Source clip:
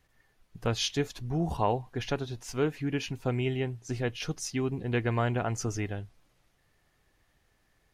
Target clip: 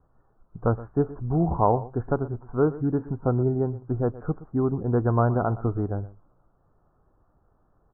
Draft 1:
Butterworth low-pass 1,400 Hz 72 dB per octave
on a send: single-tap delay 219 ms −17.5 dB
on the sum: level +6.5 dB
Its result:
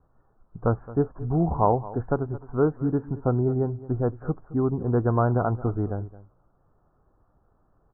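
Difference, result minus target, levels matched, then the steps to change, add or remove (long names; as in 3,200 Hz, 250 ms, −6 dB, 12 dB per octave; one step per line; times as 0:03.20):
echo 99 ms late
change: single-tap delay 120 ms −17.5 dB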